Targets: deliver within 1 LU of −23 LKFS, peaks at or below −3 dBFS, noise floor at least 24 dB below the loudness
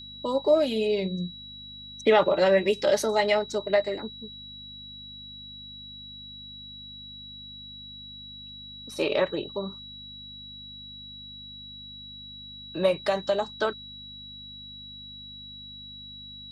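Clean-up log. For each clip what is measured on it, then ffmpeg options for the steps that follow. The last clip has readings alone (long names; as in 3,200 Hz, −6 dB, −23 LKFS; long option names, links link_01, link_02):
mains hum 50 Hz; hum harmonics up to 250 Hz; level of the hum −50 dBFS; interfering tone 3,900 Hz; level of the tone −41 dBFS; integrated loudness −25.5 LKFS; sample peak −8.5 dBFS; target loudness −23.0 LKFS
→ -af "bandreject=frequency=50:width_type=h:width=4,bandreject=frequency=100:width_type=h:width=4,bandreject=frequency=150:width_type=h:width=4,bandreject=frequency=200:width_type=h:width=4,bandreject=frequency=250:width_type=h:width=4"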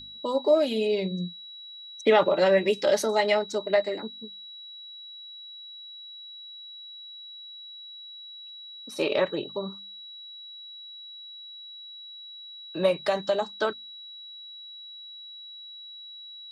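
mains hum none found; interfering tone 3,900 Hz; level of the tone −41 dBFS
→ -af "bandreject=frequency=3900:width=30"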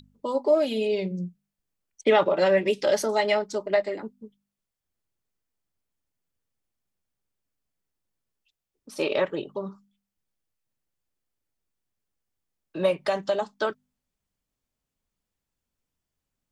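interfering tone none found; integrated loudness −25.5 LKFS; sample peak −8.5 dBFS; target loudness −23.0 LKFS
→ -af "volume=2.5dB"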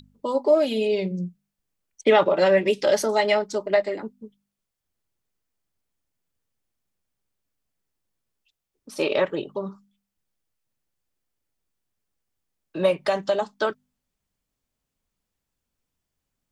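integrated loudness −23.0 LKFS; sample peak −6.0 dBFS; background noise floor −83 dBFS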